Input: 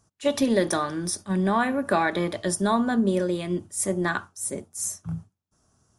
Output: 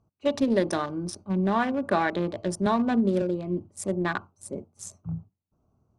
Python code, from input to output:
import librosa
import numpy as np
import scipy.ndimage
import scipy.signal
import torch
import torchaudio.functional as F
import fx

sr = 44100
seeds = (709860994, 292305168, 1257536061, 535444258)

y = fx.wiener(x, sr, points=25)
y = scipy.signal.sosfilt(scipy.signal.butter(2, 6600.0, 'lowpass', fs=sr, output='sos'), y)
y = fx.band_squash(y, sr, depth_pct=70, at=(2.66, 3.22))
y = F.gain(torch.from_numpy(y), -1.0).numpy()